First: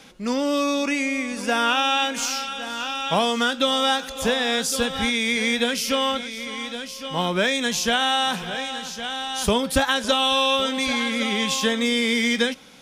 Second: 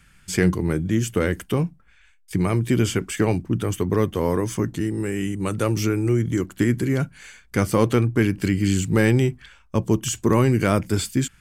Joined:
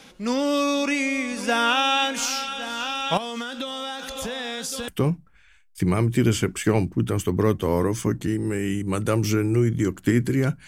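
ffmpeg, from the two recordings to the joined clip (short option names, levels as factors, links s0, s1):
-filter_complex "[0:a]asettb=1/sr,asplit=3[s0][s1][s2];[s0]atrim=end=3.174[s3];[s1]atrim=start=3.17:end=4.88,asetpts=PTS-STARTPTS,afade=t=in:d=0.004:c=qsin,afade=t=out:st=1.706:d=0.004:c=qsin,acompressor=threshold=0.0501:ratio=12:attack=3.2:release=140:knee=1:detection=peak[s4];[s2]atrim=start=4.876[s5];[s3][s4]acrossfade=d=0.004:c1=hsin:c2=qsin[s6];[s6][s5]acrossfade=d=0.004:c1=qsin:c2=hsin,apad=whole_dur=10.67,atrim=end=10.67,atrim=end=4.882[s7];[1:a]atrim=start=1.408:end=7.2[s8];[s7][s8]acrossfade=d=0.004:c1=hsin:c2=hsin"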